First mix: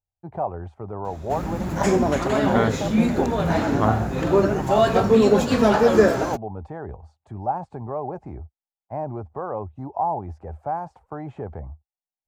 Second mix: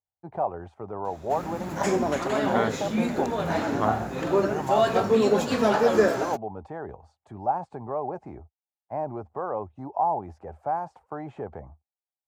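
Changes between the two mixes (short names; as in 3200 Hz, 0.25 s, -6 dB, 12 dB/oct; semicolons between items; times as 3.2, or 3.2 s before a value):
background -3.0 dB; master: add HPF 260 Hz 6 dB/oct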